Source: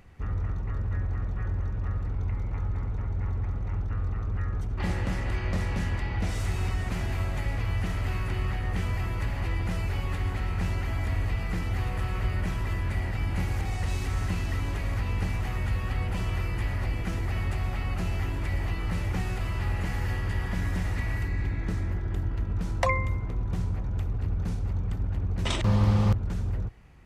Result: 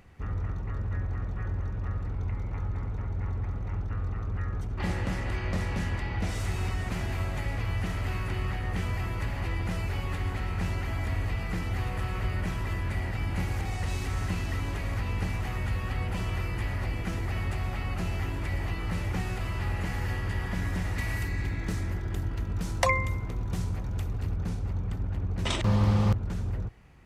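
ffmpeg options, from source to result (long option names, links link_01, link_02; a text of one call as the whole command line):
ffmpeg -i in.wav -filter_complex "[0:a]asettb=1/sr,asplit=3[link_01][link_02][link_03];[link_01]atrim=end=20.984[link_04];[link_02]atrim=start=20.98:end=24.36,asetpts=PTS-STARTPTS,afade=type=in:duration=0.004:curve=qsin,afade=type=out:start_time=3.376:duration=0.004:curve=qsin,highshelf=frequency=3700:gain=10[link_05];[link_03]atrim=start=24.356[link_06];[link_04][link_05]acrossfade=duration=0.004:curve1=hsin:curve2=qsin[link_07];[link_07][link_06]acrossfade=duration=0.004:curve1=qsin:curve2=hsin,lowshelf=frequency=62:gain=-5" out.wav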